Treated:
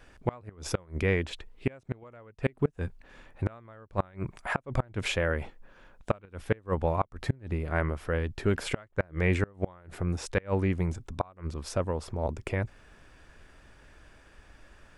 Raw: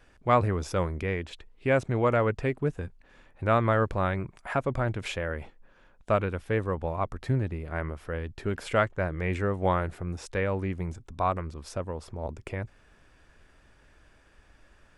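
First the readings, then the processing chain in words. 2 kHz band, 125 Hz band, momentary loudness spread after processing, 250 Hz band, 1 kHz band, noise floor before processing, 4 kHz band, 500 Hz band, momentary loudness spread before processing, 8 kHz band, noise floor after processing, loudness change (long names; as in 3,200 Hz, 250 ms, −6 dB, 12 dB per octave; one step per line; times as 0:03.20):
−1.5 dB, −1.5 dB, 10 LU, −1.0 dB, −7.0 dB, −60 dBFS, +2.0 dB, −3.5 dB, 12 LU, +3.5 dB, −58 dBFS, −3.0 dB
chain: gate with flip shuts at −17 dBFS, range −30 dB
level +4 dB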